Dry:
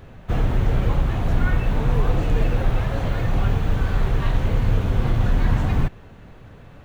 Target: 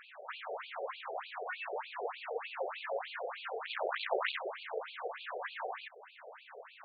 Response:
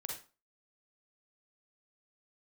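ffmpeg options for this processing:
-filter_complex "[0:a]acrossover=split=200[link_01][link_02];[link_02]acompressor=threshold=-43dB:ratio=2[link_03];[link_01][link_03]amix=inputs=2:normalize=0,asettb=1/sr,asplit=3[link_04][link_05][link_06];[link_04]atrim=end=3.654[link_07];[link_05]atrim=start=3.65:end=4.39,asetpts=PTS-STARTPTS,afade=type=in:duration=0.004:curve=qsin,afade=type=out:start_time=0.736:duration=0.004:curve=qsin,aeval=exprs='0.376*(cos(1*acos(clip(val(0)/0.376,-1,1)))-cos(1*PI/2))+0.133*(cos(7*acos(clip(val(0)/0.376,-1,1)))-cos(7*PI/2))':channel_layout=same[link_08];[link_06]atrim=start=4.386[link_09];[link_07][link_08]acrossfade=duration=0.004:curve1=hsin:curve2=qsin[link_10];[link_10][link_09]acrossfade=duration=0.004:curve1=qsin:curve2=hsin,afftfilt=real='re*between(b*sr/1024,540*pow(3400/540,0.5+0.5*sin(2*PI*3.3*pts/sr))/1.41,540*pow(3400/540,0.5+0.5*sin(2*PI*3.3*pts/sr))*1.41)':imag='im*between(b*sr/1024,540*pow(3400/540,0.5+0.5*sin(2*PI*3.3*pts/sr))/1.41,540*pow(3400/540,0.5+0.5*sin(2*PI*3.3*pts/sr))*1.41)':win_size=1024:overlap=0.75,volume=5.5dB"

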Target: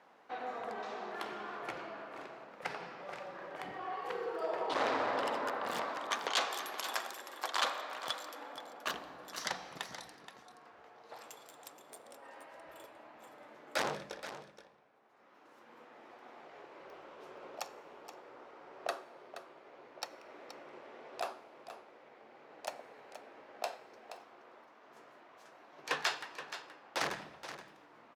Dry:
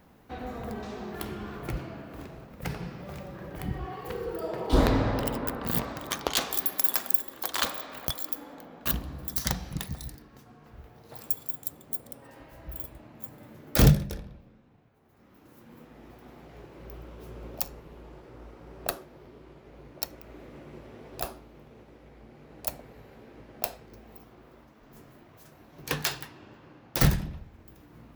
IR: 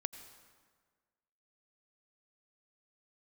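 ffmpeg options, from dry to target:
-filter_complex "[0:a]highshelf=frequency=2200:gain=-9,asoftclip=type=hard:threshold=-25dB,highpass=700,lowpass=6800,aecho=1:1:475:0.266,asplit=2[link_01][link_02];[1:a]atrim=start_sample=2205[link_03];[link_02][link_03]afir=irnorm=-1:irlink=0,volume=-9dB[link_04];[link_01][link_04]amix=inputs=2:normalize=0,volume=1.5dB"

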